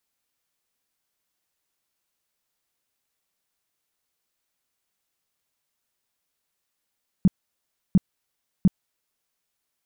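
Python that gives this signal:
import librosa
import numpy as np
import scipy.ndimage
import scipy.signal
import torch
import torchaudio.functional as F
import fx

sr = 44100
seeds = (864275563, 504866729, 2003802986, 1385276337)

y = fx.tone_burst(sr, hz=188.0, cycles=5, every_s=0.7, bursts=3, level_db=-11.0)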